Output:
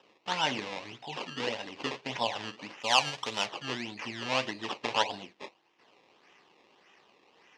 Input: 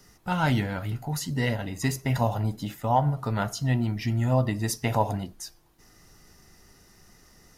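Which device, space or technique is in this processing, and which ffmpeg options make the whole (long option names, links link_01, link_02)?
circuit-bent sampling toy: -filter_complex "[0:a]acrusher=samples=20:mix=1:aa=0.000001:lfo=1:lforange=20:lforate=1.7,highpass=480,equalizer=frequency=660:width_type=q:width=4:gain=-6,equalizer=frequency=1400:width_type=q:width=4:gain=-8,equalizer=frequency=2800:width_type=q:width=4:gain=6,lowpass=frequency=5500:width=0.5412,lowpass=frequency=5500:width=1.3066,asettb=1/sr,asplit=3[link_01][link_02][link_03];[link_01]atrim=end=2.804[link_04];[link_02]atrim=start=2.8:end=3.46,asetpts=PTS-STARTPTS,afade=type=in:duration=0.004:curve=qsin,afade=type=out:start_time=0.656:duration=0.004:curve=qsin,aemphasis=mode=production:type=50fm[link_05];[link_03]atrim=start=3.456[link_06];[link_04][link_05]acrossfade=duration=0.004:curve1=hsin:curve2=qsin[link_07];[link_07][link_06]acrossfade=duration=0.004:curve1=qsin:curve2=hsin"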